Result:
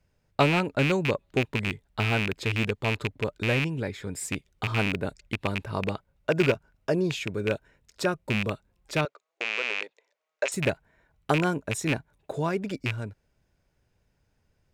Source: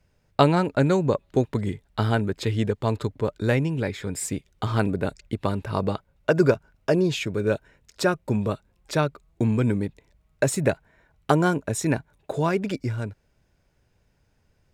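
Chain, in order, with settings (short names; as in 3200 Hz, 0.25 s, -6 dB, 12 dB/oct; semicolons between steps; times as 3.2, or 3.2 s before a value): rattling part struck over -23 dBFS, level -11 dBFS; 9.05–10.52 Chebyshev band-pass 490–6800 Hz, order 3; gain -4.5 dB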